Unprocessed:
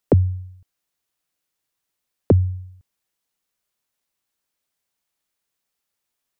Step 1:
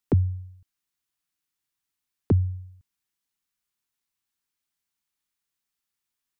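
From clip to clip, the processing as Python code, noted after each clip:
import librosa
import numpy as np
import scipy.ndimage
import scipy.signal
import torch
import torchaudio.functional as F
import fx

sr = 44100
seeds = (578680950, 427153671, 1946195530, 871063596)

y = fx.peak_eq(x, sr, hz=560.0, db=-12.5, octaves=0.69)
y = y * 10.0 ** (-4.5 / 20.0)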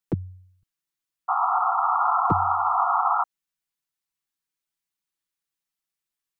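y = x + 0.7 * np.pad(x, (int(6.1 * sr / 1000.0), 0))[:len(x)]
y = fx.spec_paint(y, sr, seeds[0], shape='noise', start_s=1.28, length_s=1.96, low_hz=690.0, high_hz=1400.0, level_db=-17.0)
y = y * 10.0 ** (-5.0 / 20.0)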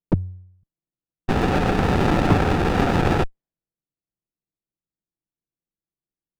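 y = fx.env_lowpass(x, sr, base_hz=540.0, full_db=-21.5)
y = fx.running_max(y, sr, window=33)
y = y * 10.0 ** (7.0 / 20.0)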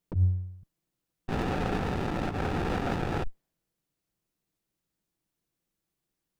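y = fx.over_compress(x, sr, threshold_db=-29.0, ratio=-1.0)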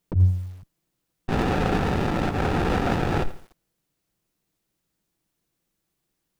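y = fx.echo_crushed(x, sr, ms=83, feedback_pct=35, bits=8, wet_db=-14.0)
y = y * 10.0 ** (6.5 / 20.0)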